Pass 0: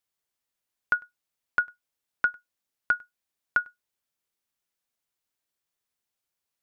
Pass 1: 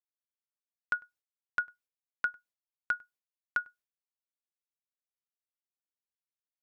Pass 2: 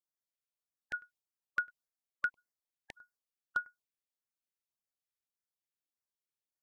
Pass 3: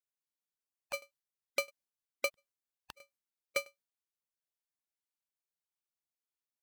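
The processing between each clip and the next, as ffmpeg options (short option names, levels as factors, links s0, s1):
-af "agate=range=0.0224:threshold=0.00282:ratio=3:detection=peak,volume=0.473"
-af "afftfilt=real='re*(1-between(b*sr/1024,770*pow(3200/770,0.5+0.5*sin(2*PI*1.7*pts/sr))/1.41,770*pow(3200/770,0.5+0.5*sin(2*PI*1.7*pts/sr))*1.41))':imag='im*(1-between(b*sr/1024,770*pow(3200/770,0.5+0.5*sin(2*PI*1.7*pts/sr))/1.41,770*pow(3200/770,0.5+0.5*sin(2*PI*1.7*pts/sr))*1.41))':win_size=1024:overlap=0.75,volume=0.794"
-af "aeval=exprs='val(0)*sgn(sin(2*PI*890*n/s))':c=same"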